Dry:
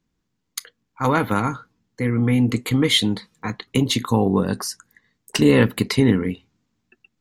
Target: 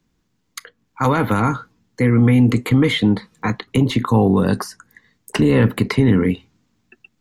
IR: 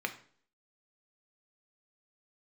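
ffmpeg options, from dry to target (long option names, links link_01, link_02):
-filter_complex "[0:a]acrossover=split=120|2200[link_01][link_02][link_03];[link_02]alimiter=limit=-15dB:level=0:latency=1:release=31[link_04];[link_03]acompressor=threshold=-41dB:ratio=6[link_05];[link_01][link_04][link_05]amix=inputs=3:normalize=0,volume=7dB"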